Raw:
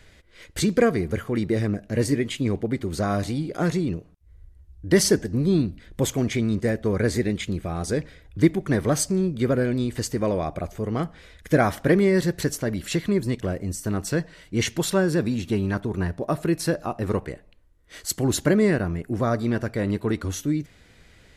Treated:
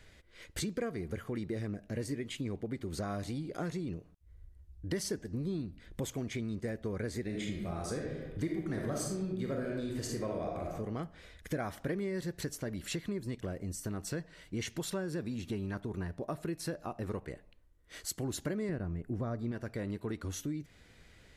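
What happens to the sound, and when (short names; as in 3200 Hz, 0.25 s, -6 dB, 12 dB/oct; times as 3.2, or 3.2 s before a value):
7.23–10.72 reverb throw, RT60 0.92 s, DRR -0.5 dB
18.69–19.52 tilt -2 dB/oct
whole clip: compressor 3:1, threshold -30 dBFS; gain -6 dB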